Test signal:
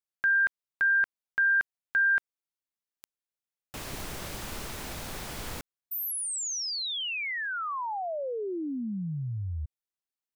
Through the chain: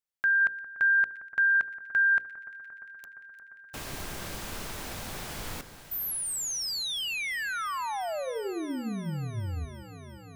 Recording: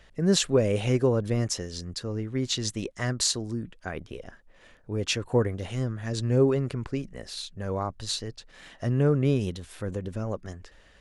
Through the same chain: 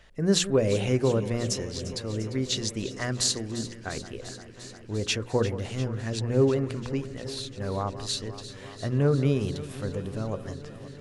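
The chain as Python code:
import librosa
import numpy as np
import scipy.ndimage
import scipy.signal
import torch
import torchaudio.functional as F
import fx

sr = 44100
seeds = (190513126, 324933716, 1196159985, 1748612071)

y = fx.hum_notches(x, sr, base_hz=60, count=9)
y = fx.echo_alternate(y, sr, ms=174, hz=1800.0, feedback_pct=88, wet_db=-13.5)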